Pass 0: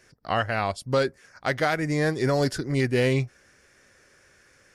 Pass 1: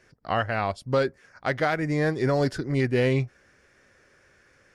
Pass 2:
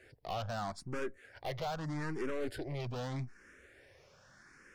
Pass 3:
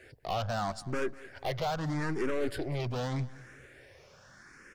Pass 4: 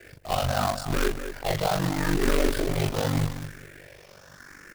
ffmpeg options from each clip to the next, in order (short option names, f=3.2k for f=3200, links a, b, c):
-af "highshelf=f=5.2k:g=-11.5"
-filter_complex "[0:a]acompressor=threshold=-35dB:ratio=2,aeval=exprs='(tanh(70.8*val(0)+0.6)-tanh(0.6))/70.8':c=same,asplit=2[a][b];[b]afreqshift=0.81[c];[a][c]amix=inputs=2:normalize=1,volume=5dB"
-af "aecho=1:1:197|394|591:0.106|0.0413|0.0161,volume=5.5dB"
-af "aecho=1:1:37.9|242:0.708|0.282,acrusher=bits=2:mode=log:mix=0:aa=0.000001,aeval=exprs='val(0)*sin(2*PI*24*n/s)':c=same,volume=7.5dB"